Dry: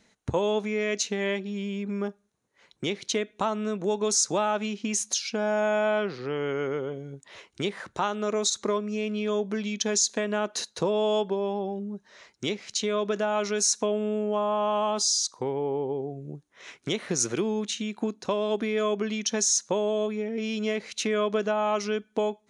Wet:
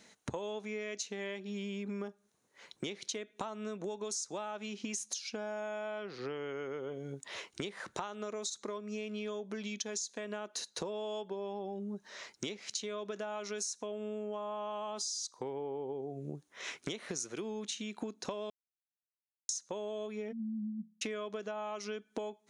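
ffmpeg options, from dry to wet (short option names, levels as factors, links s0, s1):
-filter_complex "[0:a]asplit=3[s0][s1][s2];[s0]afade=t=out:st=20.31:d=0.02[s3];[s1]asuperpass=centerf=200:order=12:qfactor=3.5,afade=t=in:st=20.31:d=0.02,afade=t=out:st=21.01:d=0.02[s4];[s2]afade=t=in:st=21.01:d=0.02[s5];[s3][s4][s5]amix=inputs=3:normalize=0,asplit=3[s6][s7][s8];[s6]atrim=end=18.5,asetpts=PTS-STARTPTS,afade=t=out:st=18.496:d=0.004:c=hsin[s9];[s7]atrim=start=18.5:end=19.49,asetpts=PTS-STARTPTS,volume=0[s10];[s8]atrim=start=19.49,asetpts=PTS-STARTPTS,afade=t=in:d=0.004:c=hsin[s11];[s9][s10][s11]concat=n=3:v=0:a=1,highpass=f=170:p=1,bass=f=250:g=-1,treble=f=4000:g=3,acompressor=threshold=0.0112:ratio=12,volume=1.41"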